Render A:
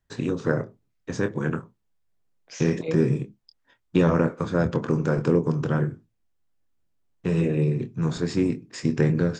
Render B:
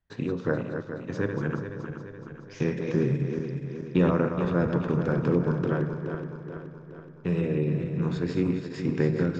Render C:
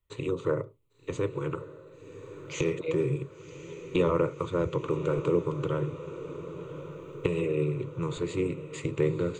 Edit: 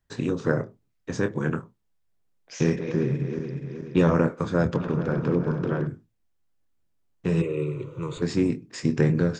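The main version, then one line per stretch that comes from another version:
A
2.76–3.97 s: from B
4.77–5.87 s: from B
7.42–8.22 s: from C

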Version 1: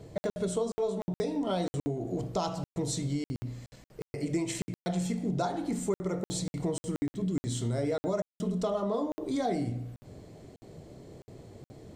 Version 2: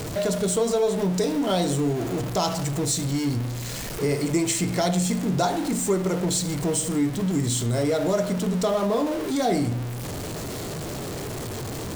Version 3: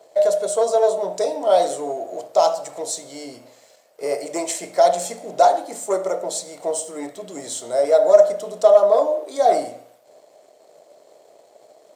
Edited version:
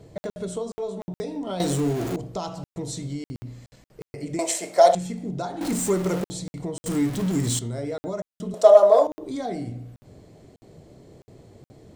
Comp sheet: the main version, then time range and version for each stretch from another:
1
1.60–2.16 s: from 2
4.39–4.95 s: from 3
5.61–6.24 s: from 2
6.86–7.59 s: from 2
8.54–9.07 s: from 3

